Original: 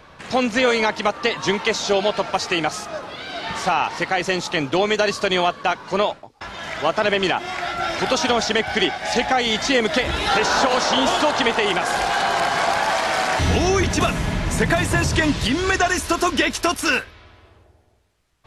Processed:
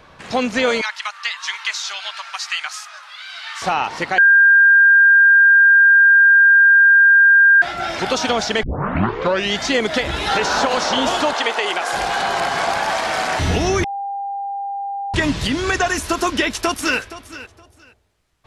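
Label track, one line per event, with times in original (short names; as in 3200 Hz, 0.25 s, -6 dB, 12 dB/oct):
0.810000	3.620000	HPF 1200 Hz 24 dB/oct
4.180000	7.620000	bleep 1600 Hz -7 dBFS
8.630000	8.630000	tape start 0.95 s
11.330000	11.930000	HPF 440 Hz
13.840000	15.140000	bleep 798 Hz -22.5 dBFS
16.290000	16.990000	echo throw 0.47 s, feedback 20%, level -15.5 dB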